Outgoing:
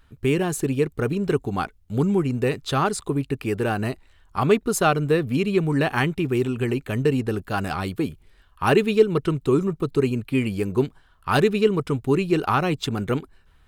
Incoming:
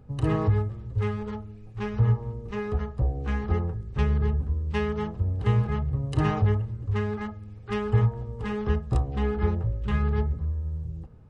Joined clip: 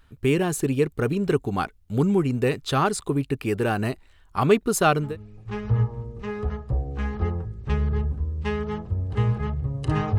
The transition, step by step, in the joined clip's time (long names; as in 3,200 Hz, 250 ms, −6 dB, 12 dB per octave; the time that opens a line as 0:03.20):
outgoing
0:05.07: continue with incoming from 0:01.36, crossfade 0.20 s